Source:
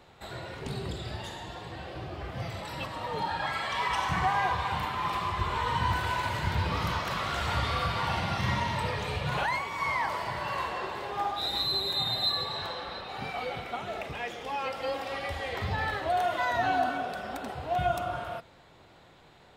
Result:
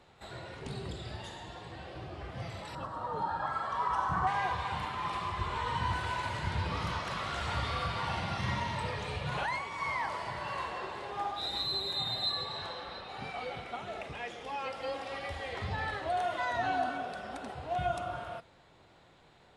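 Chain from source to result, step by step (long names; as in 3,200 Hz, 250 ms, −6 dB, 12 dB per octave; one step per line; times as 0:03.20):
0:02.75–0:04.27: high shelf with overshoot 1,700 Hz −8 dB, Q 3
level −4.5 dB
AAC 96 kbit/s 24,000 Hz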